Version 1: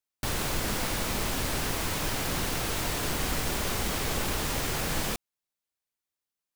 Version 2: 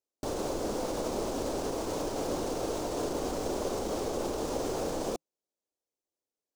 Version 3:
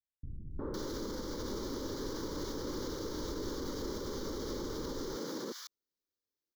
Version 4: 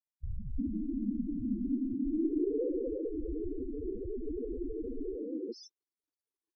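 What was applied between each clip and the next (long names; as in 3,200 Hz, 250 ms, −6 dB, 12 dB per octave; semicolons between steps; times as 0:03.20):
dynamic equaliser 1,200 Hz, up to +4 dB, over −44 dBFS, Q 0.72; brickwall limiter −23.5 dBFS, peak gain reduction 7.5 dB; drawn EQ curve 160 Hz 0 dB, 300 Hz +12 dB, 520 Hz +14 dB, 1,900 Hz −10 dB, 6,300 Hz +3 dB, 9,000 Hz −2 dB, 13,000 Hz −8 dB; level −5 dB
three-band delay without the direct sound lows, mids, highs 360/510 ms, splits 160/1,400 Hz; brickwall limiter −27 dBFS, peak gain reduction 7 dB; phaser with its sweep stopped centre 2,600 Hz, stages 6; level +1.5 dB
low-pass filter sweep 240 Hz → 9,800 Hz, 0:01.98–0:05.20; spectral peaks only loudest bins 4; level +7 dB; Opus 256 kbit/s 48,000 Hz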